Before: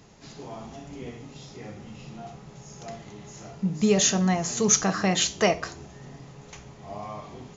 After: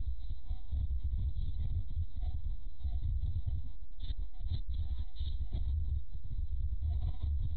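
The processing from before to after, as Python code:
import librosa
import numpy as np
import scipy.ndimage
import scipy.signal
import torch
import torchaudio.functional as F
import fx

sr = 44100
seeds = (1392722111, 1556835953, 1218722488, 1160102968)

y = np.sign(x) * np.sqrt(np.mean(np.square(x)))
y = scipy.signal.sosfilt(scipy.signal.cheby2(4, 50, [170.0, 2900.0], 'bandstop', fs=sr, output='sos'), y)
y = fx.peak_eq(y, sr, hz=150.0, db=6.0, octaves=2.2)
y = fx.lpc_monotone(y, sr, seeds[0], pitch_hz=250.0, order=16)
y = fx.high_shelf(y, sr, hz=2400.0, db=-12.0)
y = fx.hum_notches(y, sr, base_hz=50, count=10)
y = y + 0.34 * np.pad(y, (int(3.0 * sr / 1000.0), 0))[:len(y)]
y = fx.env_flatten(y, sr, amount_pct=100)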